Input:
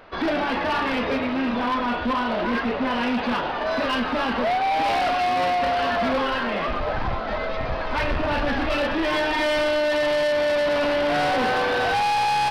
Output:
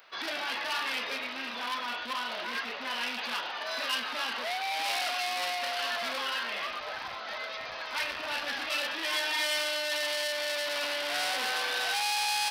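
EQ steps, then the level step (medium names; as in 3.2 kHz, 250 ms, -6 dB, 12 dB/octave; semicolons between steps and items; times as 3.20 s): differentiator; +6.0 dB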